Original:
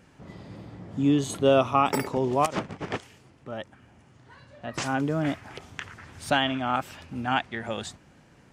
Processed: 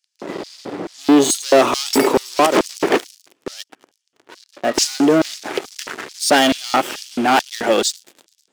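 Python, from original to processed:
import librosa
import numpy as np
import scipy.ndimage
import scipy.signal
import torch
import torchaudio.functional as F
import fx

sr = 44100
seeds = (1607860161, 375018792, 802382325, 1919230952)

y = fx.echo_wet_highpass(x, sr, ms=107, feedback_pct=81, hz=3400.0, wet_db=-16.0)
y = fx.leveller(y, sr, passes=5)
y = fx.filter_lfo_highpass(y, sr, shape='square', hz=2.3, low_hz=350.0, high_hz=4900.0, q=2.2)
y = F.gain(torch.from_numpy(y), -1.0).numpy()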